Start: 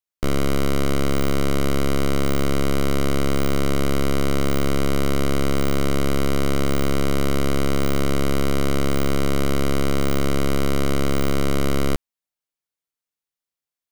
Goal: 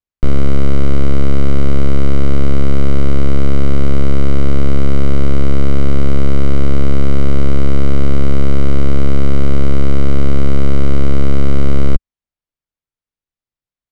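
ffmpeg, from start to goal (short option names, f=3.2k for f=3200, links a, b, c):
-af "aemphasis=mode=reproduction:type=bsi,volume=-1dB"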